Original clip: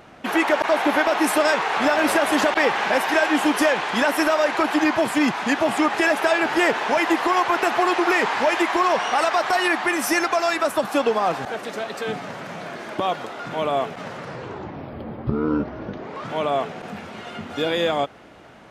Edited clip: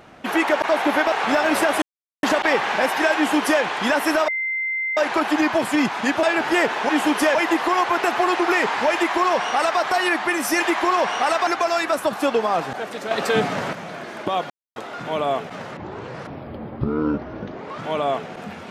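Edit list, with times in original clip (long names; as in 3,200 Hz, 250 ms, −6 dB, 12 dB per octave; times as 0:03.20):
0:01.12–0:01.65: remove
0:02.35: splice in silence 0.41 s
0:03.28–0:03.74: duplicate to 0:06.94
0:04.40: insert tone 2,080 Hz −21.5 dBFS 0.69 s
0:05.66–0:06.28: remove
0:08.52–0:09.39: duplicate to 0:10.19
0:11.83–0:12.45: clip gain +8 dB
0:13.22: splice in silence 0.26 s
0:14.23–0:14.73: reverse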